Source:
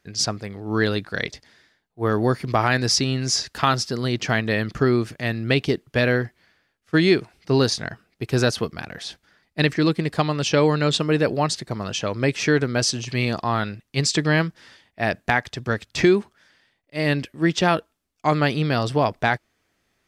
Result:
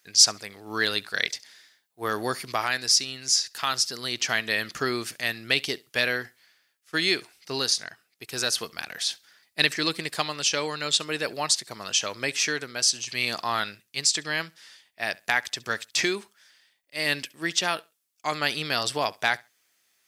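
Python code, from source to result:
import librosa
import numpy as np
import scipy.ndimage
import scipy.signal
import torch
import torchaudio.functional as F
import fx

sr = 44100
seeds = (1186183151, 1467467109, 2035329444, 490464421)

p1 = fx.tilt_eq(x, sr, slope=4.5)
p2 = fx.rider(p1, sr, range_db=4, speed_s=0.5)
p3 = p2 + fx.echo_feedback(p2, sr, ms=68, feedback_pct=19, wet_db=-24.0, dry=0)
y = F.gain(torch.from_numpy(p3), -7.0).numpy()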